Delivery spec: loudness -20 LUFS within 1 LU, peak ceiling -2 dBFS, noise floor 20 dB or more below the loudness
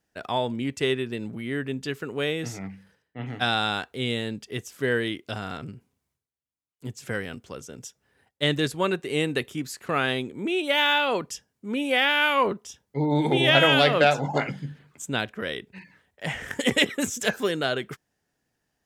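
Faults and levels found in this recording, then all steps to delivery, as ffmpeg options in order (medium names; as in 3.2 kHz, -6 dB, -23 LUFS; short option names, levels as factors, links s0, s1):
loudness -25.0 LUFS; peak level -5.0 dBFS; loudness target -20.0 LUFS
-> -af "volume=1.78,alimiter=limit=0.794:level=0:latency=1"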